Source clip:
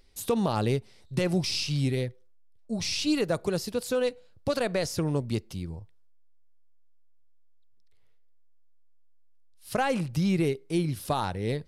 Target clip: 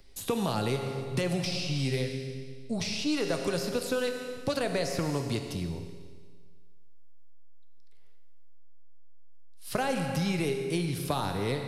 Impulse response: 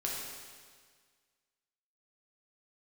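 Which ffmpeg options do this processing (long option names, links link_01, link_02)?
-filter_complex "[0:a]asplit=2[link_01][link_02];[1:a]atrim=start_sample=2205[link_03];[link_02][link_03]afir=irnorm=-1:irlink=0,volume=-4.5dB[link_04];[link_01][link_04]amix=inputs=2:normalize=0,acrossover=split=110|650|1300|3500[link_05][link_06][link_07][link_08][link_09];[link_05]acompressor=threshold=-43dB:ratio=4[link_10];[link_06]acompressor=threshold=-30dB:ratio=4[link_11];[link_07]acompressor=threshold=-38dB:ratio=4[link_12];[link_08]acompressor=threshold=-39dB:ratio=4[link_13];[link_09]acompressor=threshold=-40dB:ratio=4[link_14];[link_10][link_11][link_12][link_13][link_14]amix=inputs=5:normalize=0"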